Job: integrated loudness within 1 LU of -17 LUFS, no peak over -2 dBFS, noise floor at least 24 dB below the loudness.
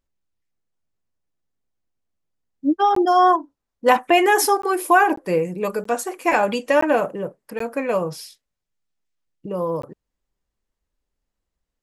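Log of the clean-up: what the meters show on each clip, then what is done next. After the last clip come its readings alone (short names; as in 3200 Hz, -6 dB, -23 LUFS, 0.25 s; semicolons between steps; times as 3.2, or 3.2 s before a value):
dropouts 7; longest dropout 14 ms; loudness -19.5 LUFS; peak -3.5 dBFS; loudness target -17.0 LUFS
-> interpolate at 2.95/4.62/5.16/5.84/6.81/7.59/9.82, 14 ms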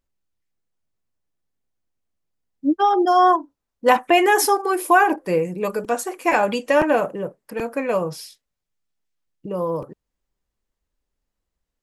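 dropouts 0; loudness -19.5 LUFS; peak -3.5 dBFS; loudness target -17.0 LUFS
-> gain +2.5 dB; limiter -2 dBFS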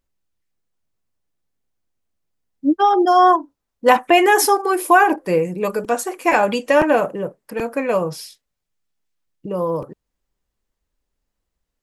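loudness -17.0 LUFS; peak -2.0 dBFS; noise floor -79 dBFS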